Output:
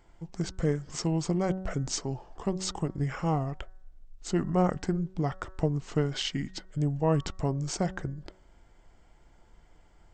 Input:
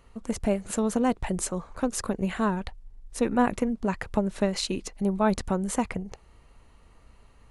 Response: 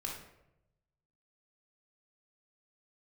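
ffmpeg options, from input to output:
-af "bandreject=f=253.5:t=h:w=4,bandreject=f=507:t=h:w=4,bandreject=f=760.5:t=h:w=4,bandreject=f=1014:t=h:w=4,bandreject=f=1267.5:t=h:w=4,bandreject=f=1521:t=h:w=4,bandreject=f=1774.5:t=h:w=4,bandreject=f=2028:t=h:w=4,bandreject=f=2281.5:t=h:w=4,bandreject=f=2535:t=h:w=4,asetrate=32667,aresample=44100,volume=0.75"

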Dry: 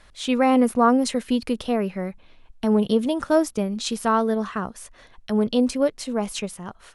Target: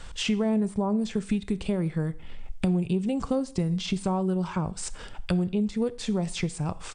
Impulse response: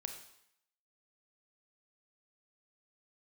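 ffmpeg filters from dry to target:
-filter_complex "[0:a]acrossover=split=4100[s0][s1];[s1]acompressor=threshold=0.01:ratio=4:attack=1:release=60[s2];[s0][s2]amix=inputs=2:normalize=0,bass=f=250:g=8,treble=f=4000:g=6,acrossover=split=1000[s3][s4];[s4]alimiter=level_in=1.06:limit=0.0631:level=0:latency=1:release=266,volume=0.944[s5];[s3][s5]amix=inputs=2:normalize=0,acompressor=threshold=0.0316:ratio=6,asetrate=37084,aresample=44100,atempo=1.18921,asplit=2[s6][s7];[1:a]atrim=start_sample=2205,asetrate=61740,aresample=44100[s8];[s7][s8]afir=irnorm=-1:irlink=0,volume=0.75[s9];[s6][s9]amix=inputs=2:normalize=0,volume=1.41"

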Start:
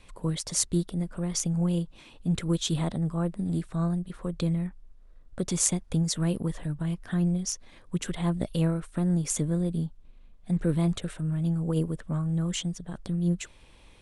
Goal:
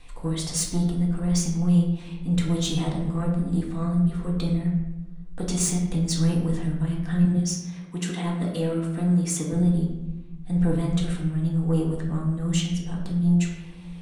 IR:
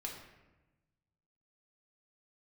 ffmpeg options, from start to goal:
-filter_complex "[0:a]asettb=1/sr,asplit=3[s0][s1][s2];[s0]atrim=end=7.254[s3];[s1]atrim=start=7.25:end=9.53,asetpts=PTS-STARTPTS,afade=t=in:d=0.004:c=qsin,afade=t=out:st=2.276:d=0.004:c=qsin,highpass=f=180:w=0.5412,highpass=f=180:w=1.3066[s4];[s2]atrim=start=9.526[s5];[s3][s4]acrossfade=d=0.004:c1=hsin:c2=qsin[s6];[s6][s5]acrossfade=d=0.004:c1=qsin:c2=hsin,asoftclip=type=tanh:threshold=0.0891[s7];[1:a]atrim=start_sample=2205,asetrate=48510,aresample=44100[s8];[s7][s8]afir=irnorm=-1:irlink=0,volume=2.11"

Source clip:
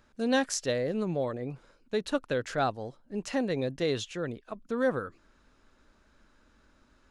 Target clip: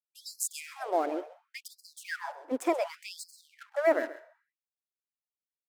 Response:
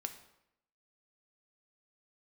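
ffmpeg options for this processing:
-filter_complex "[0:a]equalizer=f=3100:w=1.4:g=-15,bandreject=f=161.3:t=h:w=4,bandreject=f=322.6:t=h:w=4,bandreject=f=483.9:t=h:w=4,bandreject=f=645.2:t=h:w=4,bandreject=f=806.5:t=h:w=4,bandreject=f=967.8:t=h:w=4,bandreject=f=1129.1:t=h:w=4,asetrate=55125,aresample=44100,aeval=exprs='sgn(val(0))*max(abs(val(0))-0.00335,0)':c=same,asplit=2[s0][s1];[1:a]atrim=start_sample=2205,adelay=131[s2];[s1][s2]afir=irnorm=-1:irlink=0,volume=0.251[s3];[s0][s3]amix=inputs=2:normalize=0,afftfilt=real='re*gte(b*sr/1024,250*pow(4100/250,0.5+0.5*sin(2*PI*0.68*pts/sr)))':imag='im*gte(b*sr/1024,250*pow(4100/250,0.5+0.5*sin(2*PI*0.68*pts/sr)))':win_size=1024:overlap=0.75,volume=1.78"

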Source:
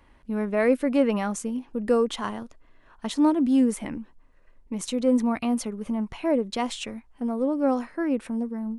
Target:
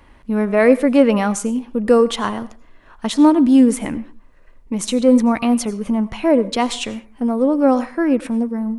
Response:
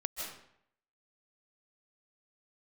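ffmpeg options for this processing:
-filter_complex "[0:a]asplit=2[s0][s1];[1:a]atrim=start_sample=2205,afade=t=out:st=0.44:d=0.01,atrim=end_sample=19845,asetrate=79380,aresample=44100[s2];[s1][s2]afir=irnorm=-1:irlink=0,volume=0.335[s3];[s0][s3]amix=inputs=2:normalize=0,volume=2.37"

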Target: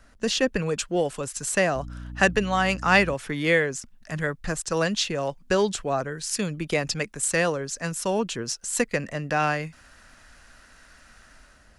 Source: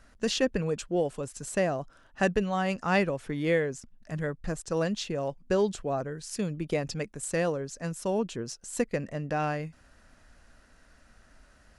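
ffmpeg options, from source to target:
-filter_complex "[0:a]acrossover=split=400|960[s0][s1][s2];[s2]dynaudnorm=f=200:g=5:m=2.51[s3];[s0][s1][s3]amix=inputs=3:normalize=0,asettb=1/sr,asplit=3[s4][s5][s6];[s4]atrim=end=1.754[s7];[s5]atrim=start=1.75:end=3.14,asetpts=PTS-STARTPTS,afade=t=in:d=0.004:c=qsin,afade=t=out:st=1.386:d=0.004:c=qsin,aeval=exprs='val(0)+0.0126*(sin(2*PI*60*n/s)+sin(2*PI*2*60*n/s)/2+sin(2*PI*3*60*n/s)/3+sin(2*PI*4*60*n/s)/4+sin(2*PI*5*60*n/s)/5)':c=same[s8];[s6]atrim=start=3.136[s9];[s7][s8]acrossfade=d=0.004:c1=hsin:c2=qsin[s10];[s10][s9]acrossfade=d=0.004:c1=qsin:c2=hsin,volume=1.33"

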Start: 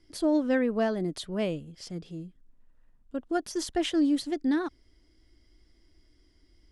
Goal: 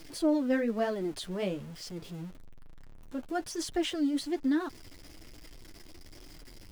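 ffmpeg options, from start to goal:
-af "aeval=exprs='val(0)+0.5*0.00891*sgn(val(0))':c=same,flanger=delay=6.1:depth=6:regen=-19:speed=1.1:shape=triangular"

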